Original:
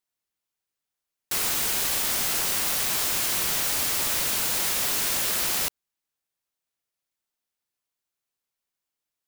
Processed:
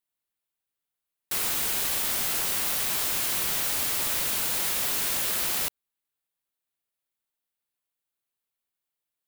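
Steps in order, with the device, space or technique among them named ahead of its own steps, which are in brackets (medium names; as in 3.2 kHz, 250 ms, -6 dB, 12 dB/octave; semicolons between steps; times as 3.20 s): exciter from parts (in parallel at -5 dB: high-pass 3.6 kHz 24 dB/octave + saturation -31 dBFS, distortion -8 dB + high-pass 4.7 kHz 12 dB/octave); on the sum: trim -2.5 dB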